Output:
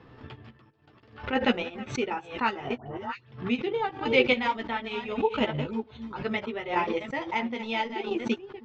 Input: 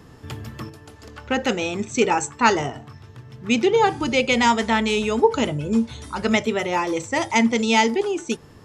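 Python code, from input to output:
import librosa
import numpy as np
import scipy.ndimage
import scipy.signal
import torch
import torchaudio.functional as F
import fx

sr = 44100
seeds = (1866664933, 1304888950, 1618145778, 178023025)

y = fx.reverse_delay(x, sr, ms=394, wet_db=-9.0)
y = scipy.signal.sosfilt(scipy.signal.butter(4, 3700.0, 'lowpass', fs=sr, output='sos'), y)
y = fx.low_shelf(y, sr, hz=130.0, db=-8.0)
y = fx.transient(y, sr, attack_db=2, sustain_db=-11)
y = fx.level_steps(y, sr, step_db=15, at=(0.57, 1.33))
y = fx.dispersion(y, sr, late='highs', ms=121.0, hz=1500.0, at=(2.76, 3.32))
y = fx.chopper(y, sr, hz=0.74, depth_pct=60, duty_pct=20)
y = fx.chorus_voices(y, sr, voices=6, hz=0.63, base_ms=12, depth_ms=4.3, mix_pct=40)
y = fx.pre_swell(y, sr, db_per_s=130.0)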